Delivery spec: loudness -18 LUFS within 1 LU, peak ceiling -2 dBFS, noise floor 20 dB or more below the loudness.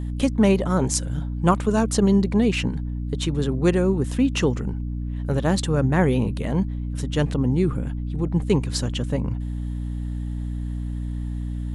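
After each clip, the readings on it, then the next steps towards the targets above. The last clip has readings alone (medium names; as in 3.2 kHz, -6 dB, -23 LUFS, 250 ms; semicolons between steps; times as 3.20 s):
hum 60 Hz; highest harmonic 300 Hz; hum level -25 dBFS; loudness -23.5 LUFS; peak level -4.5 dBFS; loudness target -18.0 LUFS
-> de-hum 60 Hz, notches 5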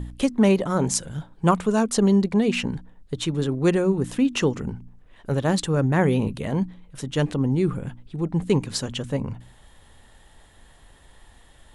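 hum not found; loudness -23.5 LUFS; peak level -6.0 dBFS; loudness target -18.0 LUFS
-> trim +5.5 dB; peak limiter -2 dBFS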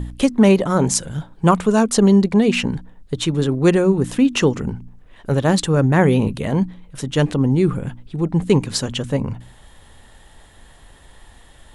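loudness -18.0 LUFS; peak level -2.0 dBFS; noise floor -48 dBFS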